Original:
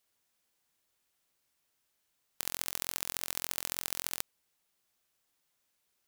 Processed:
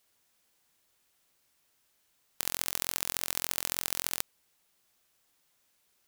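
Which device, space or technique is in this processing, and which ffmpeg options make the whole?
parallel distortion: -filter_complex "[0:a]asplit=2[s0][s1];[s1]asoftclip=type=hard:threshold=0.126,volume=0.631[s2];[s0][s2]amix=inputs=2:normalize=0,volume=1.26"

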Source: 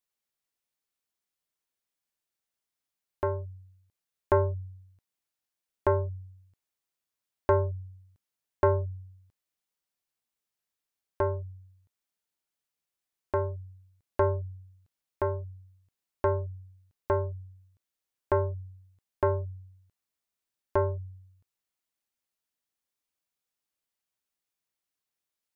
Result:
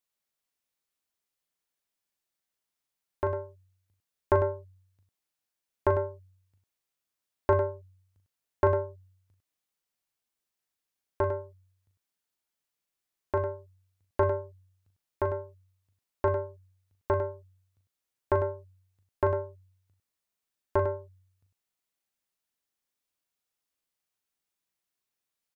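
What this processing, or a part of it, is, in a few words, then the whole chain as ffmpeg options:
slapback doubling: -filter_complex "[0:a]asplit=3[s0][s1][s2];[s1]adelay=39,volume=0.376[s3];[s2]adelay=101,volume=0.335[s4];[s0][s3][s4]amix=inputs=3:normalize=0"

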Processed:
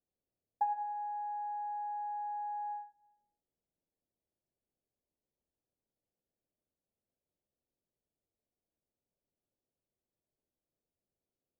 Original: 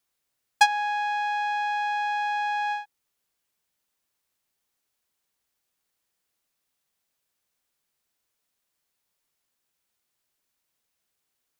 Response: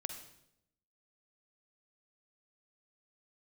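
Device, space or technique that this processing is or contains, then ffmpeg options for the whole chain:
next room: -filter_complex "[0:a]lowpass=f=620:w=0.5412,lowpass=f=620:w=1.3066[s0];[1:a]atrim=start_sample=2205[s1];[s0][s1]afir=irnorm=-1:irlink=0"

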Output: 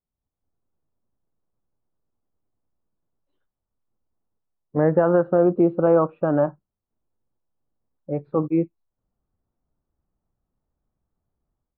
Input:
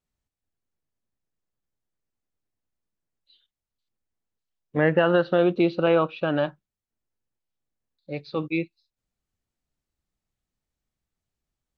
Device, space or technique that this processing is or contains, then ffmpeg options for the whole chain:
action camera in a waterproof case: -af "lowpass=f=1200:w=0.5412,lowpass=f=1200:w=1.3066,dynaudnorm=f=200:g=3:m=4.22,volume=0.562" -ar 48000 -c:a aac -b:a 128k

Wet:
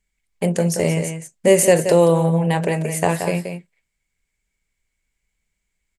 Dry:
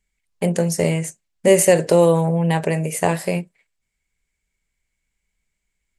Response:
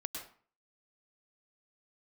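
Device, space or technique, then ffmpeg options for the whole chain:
ducked delay: -filter_complex "[0:a]asplit=3[s0][s1][s2];[s1]adelay=177,volume=0.422[s3];[s2]apad=whole_len=271569[s4];[s3][s4]sidechaincompress=threshold=0.158:ratio=8:attack=16:release=254[s5];[s0][s5]amix=inputs=2:normalize=0"

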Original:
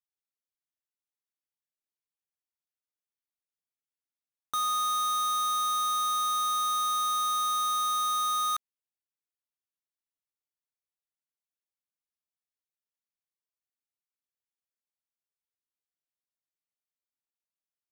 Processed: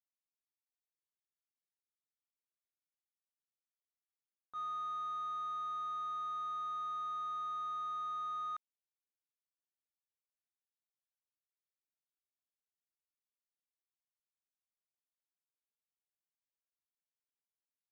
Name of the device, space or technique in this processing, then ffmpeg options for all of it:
hearing-loss simulation: -af "lowpass=1600,agate=range=0.0224:threshold=0.158:ratio=3:detection=peak,volume=5.62"

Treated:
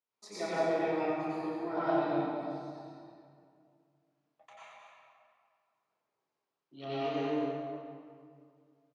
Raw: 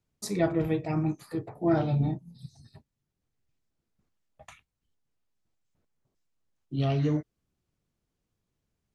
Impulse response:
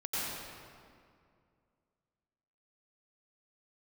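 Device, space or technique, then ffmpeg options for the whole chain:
station announcement: -filter_complex "[0:a]highpass=470,lowpass=4900,equalizer=f=1000:t=o:w=0.43:g=5,aecho=1:1:29.15|224.5:0.447|0.447[s0];[1:a]atrim=start_sample=2205[s1];[s0][s1]afir=irnorm=-1:irlink=0,volume=0.501"

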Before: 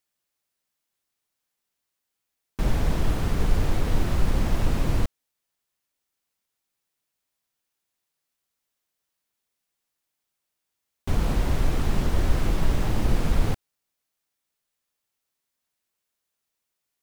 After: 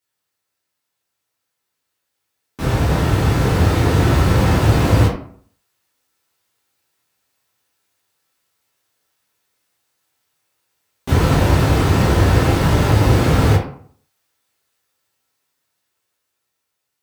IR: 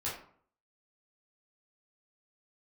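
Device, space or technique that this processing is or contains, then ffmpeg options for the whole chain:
far laptop microphone: -filter_complex "[1:a]atrim=start_sample=2205[s0];[0:a][s0]afir=irnorm=-1:irlink=0,highpass=100,dynaudnorm=f=810:g=7:m=2.51,volume=1.41"

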